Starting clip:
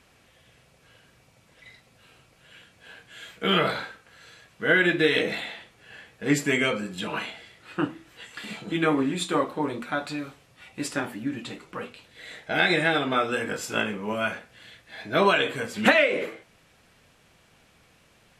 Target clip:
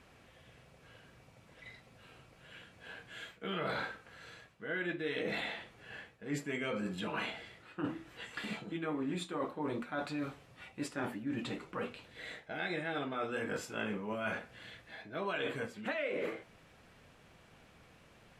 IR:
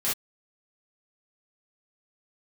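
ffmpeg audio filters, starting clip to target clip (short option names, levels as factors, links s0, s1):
-af "highshelf=f=3100:g=-8.5,areverse,acompressor=threshold=0.02:ratio=10,areverse"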